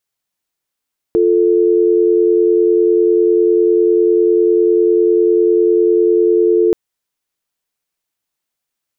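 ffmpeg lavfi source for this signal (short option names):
-f lavfi -i "aevalsrc='0.266*(sin(2*PI*350*t)+sin(2*PI*440*t))':d=5.58:s=44100"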